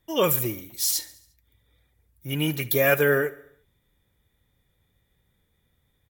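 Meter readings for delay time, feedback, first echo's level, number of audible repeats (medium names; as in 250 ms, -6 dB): 70 ms, 55%, -19.0 dB, 4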